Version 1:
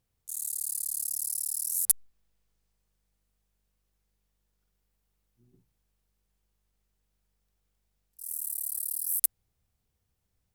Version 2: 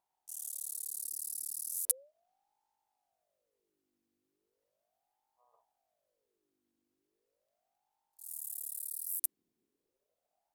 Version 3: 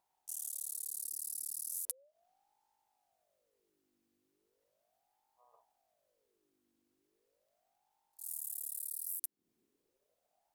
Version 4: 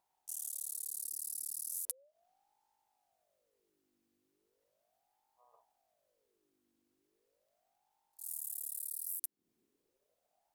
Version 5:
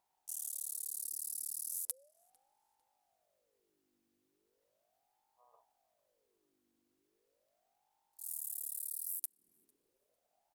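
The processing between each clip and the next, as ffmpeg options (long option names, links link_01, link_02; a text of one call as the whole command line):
ffmpeg -i in.wav -af "aeval=exprs='val(0)*sin(2*PI*570*n/s+570*0.5/0.37*sin(2*PI*0.37*n/s))':channel_layout=same,volume=-5dB" out.wav
ffmpeg -i in.wav -af "acompressor=threshold=-40dB:ratio=6,volume=3.5dB" out.wav
ffmpeg -i in.wav -af anull out.wav
ffmpeg -i in.wav -filter_complex "[0:a]asplit=2[link_01][link_02];[link_02]adelay=450,lowpass=frequency=3200:poles=1,volume=-24dB,asplit=2[link_03][link_04];[link_04]adelay=450,lowpass=frequency=3200:poles=1,volume=0.53,asplit=2[link_05][link_06];[link_06]adelay=450,lowpass=frequency=3200:poles=1,volume=0.53[link_07];[link_01][link_03][link_05][link_07]amix=inputs=4:normalize=0" out.wav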